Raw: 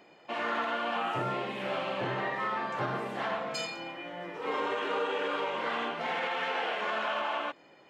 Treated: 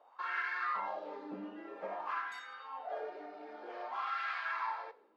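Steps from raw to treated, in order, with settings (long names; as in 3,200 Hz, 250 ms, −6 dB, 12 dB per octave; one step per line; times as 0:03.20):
change of speed 1.53×
LFO wah 0.52 Hz 290–1,600 Hz, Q 4
coupled-rooms reverb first 0.5 s, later 1.7 s, from −19 dB, DRR 14.5 dB
level +1.5 dB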